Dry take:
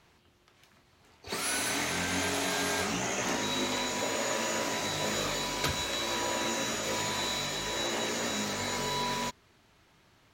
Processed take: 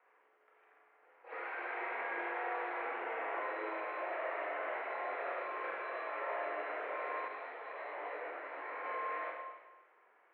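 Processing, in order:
soft clipping −30 dBFS, distortion −13 dB
single-sideband voice off tune +75 Hz 350–2,100 Hz
four-comb reverb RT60 1.2 s, combs from 33 ms, DRR −2 dB
0:07.28–0:08.84: micro pitch shift up and down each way 46 cents
level −5 dB

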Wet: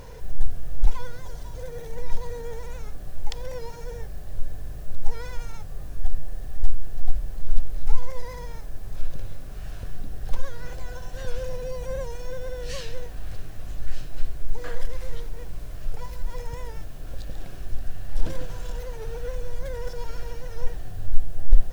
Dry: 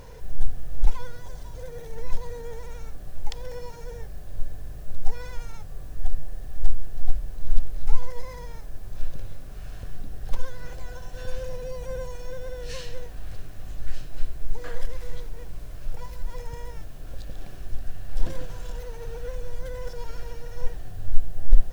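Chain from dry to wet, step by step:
in parallel at −7 dB: soft clipping −15 dBFS, distortion −7 dB
on the sum: wow of a warped record 78 rpm, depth 100 cents
level −1 dB

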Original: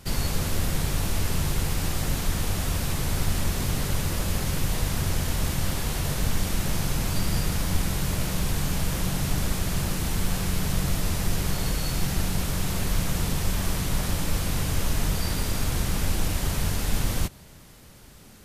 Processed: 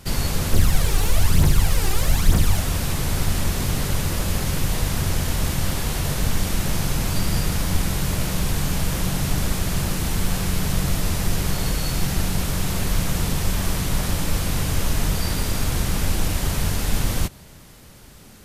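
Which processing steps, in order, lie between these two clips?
0:00.53–0:02.60: phase shifter 1.1 Hz, delay 2.7 ms, feedback 57%
level +3.5 dB

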